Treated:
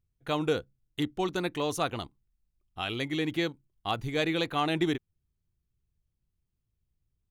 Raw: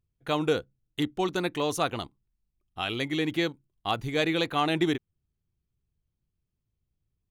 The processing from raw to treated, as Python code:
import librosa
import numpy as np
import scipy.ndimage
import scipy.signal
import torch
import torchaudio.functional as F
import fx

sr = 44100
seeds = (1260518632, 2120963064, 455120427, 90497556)

y = fx.low_shelf(x, sr, hz=81.0, db=6.0)
y = y * 10.0 ** (-2.5 / 20.0)